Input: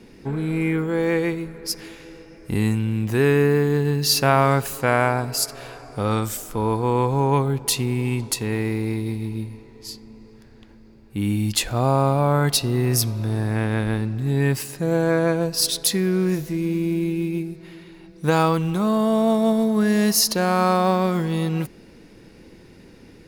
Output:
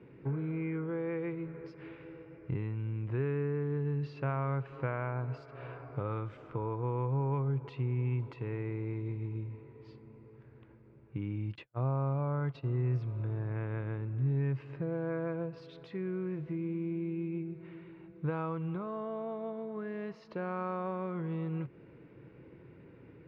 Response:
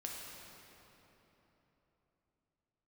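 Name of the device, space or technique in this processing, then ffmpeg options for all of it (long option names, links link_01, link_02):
bass amplifier: -filter_complex "[0:a]asplit=3[link_01][link_02][link_03];[link_01]afade=type=out:start_time=11.54:duration=0.02[link_04];[link_02]agate=range=-51dB:threshold=-20dB:ratio=16:detection=peak,afade=type=in:start_time=11.54:duration=0.02,afade=type=out:start_time=12.62:duration=0.02[link_05];[link_03]afade=type=in:start_time=12.62:duration=0.02[link_06];[link_04][link_05][link_06]amix=inputs=3:normalize=0,acompressor=threshold=-28dB:ratio=3,highpass=88,equalizer=frequency=130:width_type=q:width=4:gain=8,equalizer=frequency=220:width_type=q:width=4:gain=-10,equalizer=frequency=760:width_type=q:width=4:gain=-7,equalizer=frequency=1800:width_type=q:width=4:gain=-6,lowpass=frequency=2200:width=0.5412,lowpass=frequency=2200:width=1.3066,volume=-5.5dB"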